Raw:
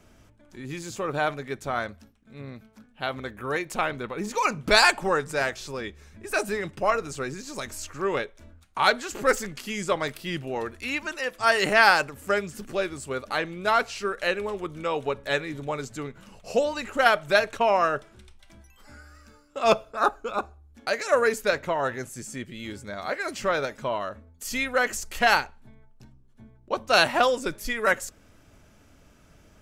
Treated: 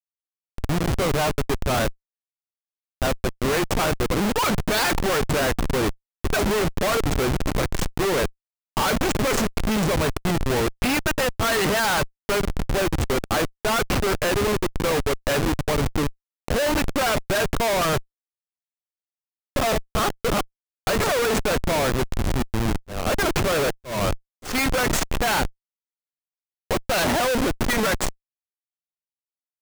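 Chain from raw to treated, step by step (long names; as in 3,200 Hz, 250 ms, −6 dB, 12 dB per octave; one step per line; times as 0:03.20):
comparator with hysteresis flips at −31.5 dBFS
0:22.64–0:24.55: volume swells 204 ms
level +6.5 dB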